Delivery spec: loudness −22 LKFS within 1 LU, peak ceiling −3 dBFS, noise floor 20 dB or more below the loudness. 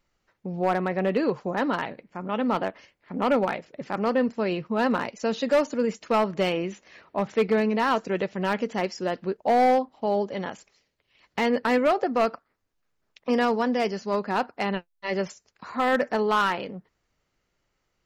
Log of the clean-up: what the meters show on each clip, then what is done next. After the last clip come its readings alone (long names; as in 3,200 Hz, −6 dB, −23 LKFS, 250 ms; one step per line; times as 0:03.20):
share of clipped samples 1.0%; peaks flattened at −15.5 dBFS; integrated loudness −26.0 LKFS; sample peak −15.5 dBFS; target loudness −22.0 LKFS
→ clipped peaks rebuilt −15.5 dBFS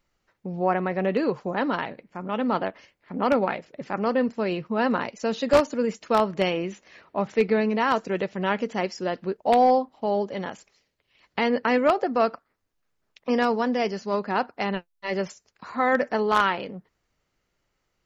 share of clipped samples 0.0%; integrated loudness −25.0 LKFS; sample peak −6.5 dBFS; target loudness −22.0 LKFS
→ level +3 dB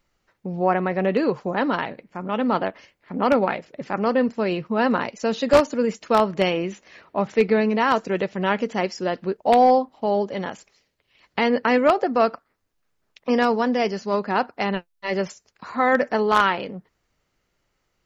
integrated loudness −22.0 LKFS; sample peak −3.5 dBFS; background noise floor −73 dBFS